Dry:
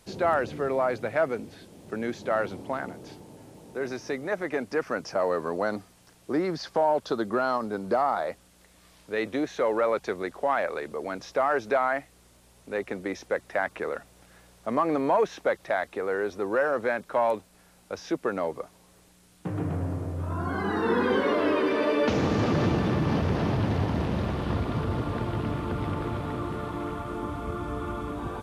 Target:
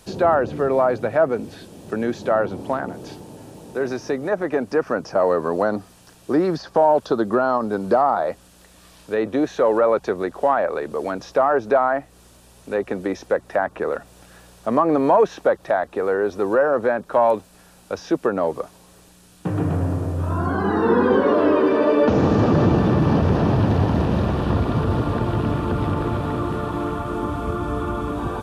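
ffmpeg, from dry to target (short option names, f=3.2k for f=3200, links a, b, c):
-filter_complex "[0:a]bandreject=f=2.1k:w=8.7,acrossover=split=1400[a][b];[b]acompressor=threshold=-46dB:ratio=6[c];[a][c]amix=inputs=2:normalize=0,volume=8dB"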